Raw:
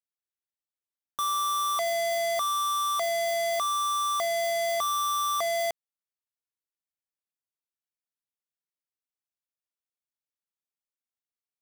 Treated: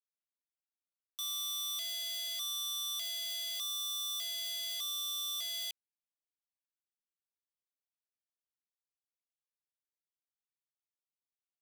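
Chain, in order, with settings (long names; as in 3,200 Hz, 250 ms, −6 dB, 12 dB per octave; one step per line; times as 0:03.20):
Butterworth high-pass 2,600 Hz 72 dB per octave
high-shelf EQ 6,700 Hz −10.5 dB
leveller curve on the samples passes 3
level −3 dB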